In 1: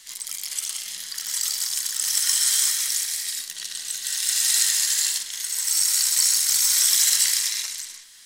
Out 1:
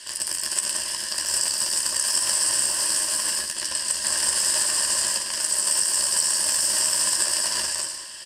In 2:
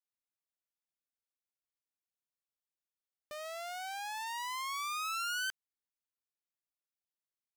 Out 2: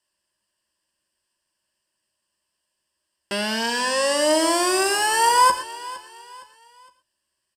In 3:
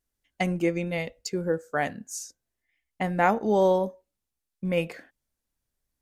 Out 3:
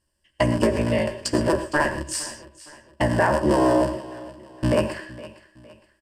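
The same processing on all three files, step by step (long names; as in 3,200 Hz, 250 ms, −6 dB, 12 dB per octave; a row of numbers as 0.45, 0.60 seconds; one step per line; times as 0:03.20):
sub-harmonics by changed cycles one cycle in 3, inverted
EQ curve with evenly spaced ripples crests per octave 1.3, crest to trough 13 dB
downward compressor 5 to 1, threshold −23 dBFS
double-tracking delay 13 ms −8 dB
repeating echo 462 ms, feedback 38%, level −19 dB
reverb whose tail is shaped and stops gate 140 ms rising, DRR 10.5 dB
dynamic equaliser 3,200 Hz, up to −7 dB, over −44 dBFS, Q 1.2
low-pass filter 11,000 Hz 24 dB per octave
normalise the peak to −6 dBFS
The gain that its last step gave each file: +4.5, +16.5, +7.0 decibels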